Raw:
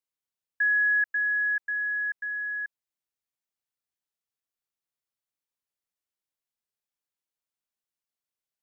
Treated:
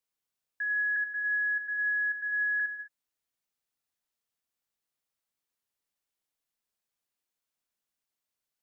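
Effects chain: peak limiter -31.5 dBFS, peak gain reduction 12 dB; gated-style reverb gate 230 ms flat, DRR 4.5 dB; 0.96–2.60 s: three bands expanded up and down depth 40%; trim +2 dB

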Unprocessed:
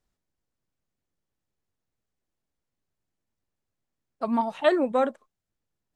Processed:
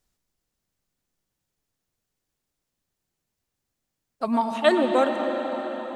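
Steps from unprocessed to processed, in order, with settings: treble shelf 3.3 kHz +8.5 dB; on a send: reverberation RT60 5.9 s, pre-delay 93 ms, DRR 4 dB; on the sum: trim +1.5 dB

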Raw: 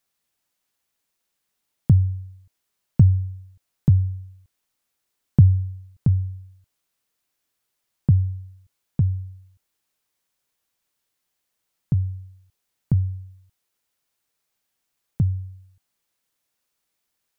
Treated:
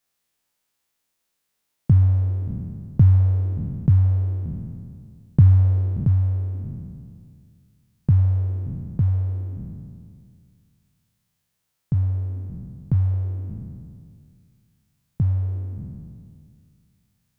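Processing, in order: spectral sustain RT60 2.20 s; trim -2 dB

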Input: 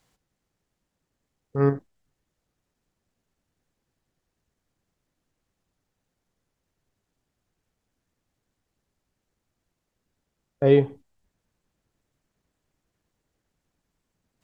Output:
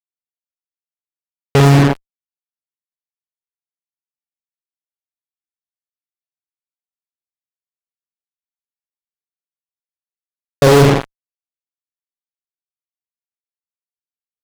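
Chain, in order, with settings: peak limiter -24 dBFS, peak gain reduction 17.5 dB; flutter echo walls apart 8.5 m, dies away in 0.79 s; fuzz box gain 46 dB, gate -39 dBFS; trim +7.5 dB

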